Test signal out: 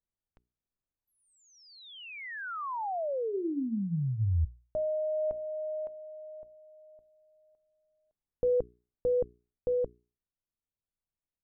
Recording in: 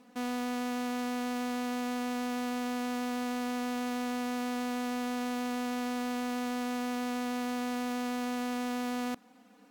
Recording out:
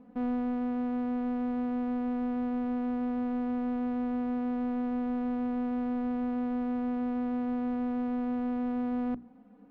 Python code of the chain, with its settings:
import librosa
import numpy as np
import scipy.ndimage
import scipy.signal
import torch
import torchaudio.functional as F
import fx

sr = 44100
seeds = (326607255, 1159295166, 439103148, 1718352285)

y = scipy.signal.sosfilt(scipy.signal.bessel(2, 2200.0, 'lowpass', norm='mag', fs=sr, output='sos'), x)
y = fx.tilt_eq(y, sr, slope=-4.5)
y = fx.hum_notches(y, sr, base_hz=60, count=7)
y = fx.rider(y, sr, range_db=4, speed_s=0.5)
y = y * 10.0 ** (-4.0 / 20.0)